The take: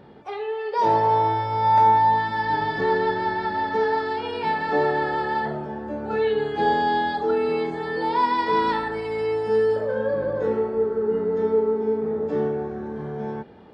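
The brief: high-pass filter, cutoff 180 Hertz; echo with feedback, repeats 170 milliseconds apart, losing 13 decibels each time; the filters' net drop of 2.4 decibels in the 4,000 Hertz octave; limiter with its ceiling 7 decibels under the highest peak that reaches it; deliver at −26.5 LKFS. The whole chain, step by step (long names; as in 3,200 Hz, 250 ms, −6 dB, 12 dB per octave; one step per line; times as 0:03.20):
high-pass filter 180 Hz
parametric band 4,000 Hz −3 dB
brickwall limiter −16.5 dBFS
repeating echo 170 ms, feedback 22%, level −13 dB
level −2 dB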